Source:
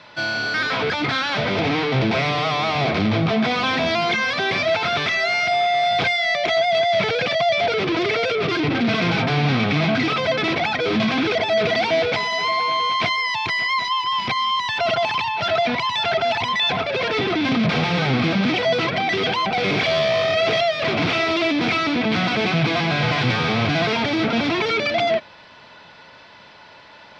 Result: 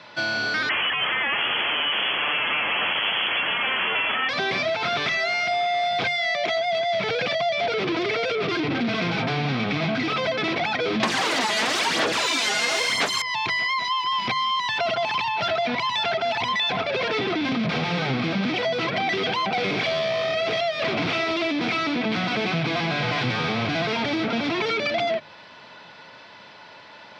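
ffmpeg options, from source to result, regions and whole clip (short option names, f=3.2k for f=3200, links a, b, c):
-filter_complex "[0:a]asettb=1/sr,asplit=3[a][b][c];[a]atrim=end=0.694[d];[b]atrim=start=0.69:end=4.29,asetpts=PTS-STARTPTS,afade=t=in:d=0.004:c=qsin,afade=t=out:st=3.596:d=0.004:c=qsin,acontrast=35,aeval=exprs='(mod(3.76*val(0)+1,2)-1)/3.76':c=same,lowpass=f=2.9k:t=q:w=0.5098,lowpass=f=2.9k:t=q:w=0.6013,lowpass=f=2.9k:t=q:w=0.9,lowpass=f=2.9k:t=q:w=2.563,afreqshift=-3400[e];[c]atrim=start=4.286[f];[d][e]acrossfade=d=0.004:c1=hsin:c2=qsin[g];[g][f]acrossfade=d=0.004:c1=qsin:c2=hsin,asettb=1/sr,asplit=3[h][i][j];[h]atrim=end=11.034[k];[i]atrim=start=11.03:end=13.22,asetpts=PTS-STARTPTS,afade=t=in:d=0.004:c=qsin,afade=t=out:st=2.186:d=0.004:c=qsin,aeval=exprs='0.355*sin(PI/2*7.94*val(0)/0.355)':c=same,highpass=160,lowpass=4.4k,aphaser=in_gain=1:out_gain=1:delay=4.9:decay=0.55:speed=1:type=sinusoidal[l];[j]atrim=start=13.216[m];[k][l]acrossfade=d=0.004:c1=hsin:c2=qsin[n];[n][m]acrossfade=d=0.004:c1=qsin:c2=hsin,highpass=100,bandreject=f=50:t=h:w=6,bandreject=f=100:t=h:w=6,bandreject=f=150:t=h:w=6,acompressor=threshold=-21dB:ratio=6"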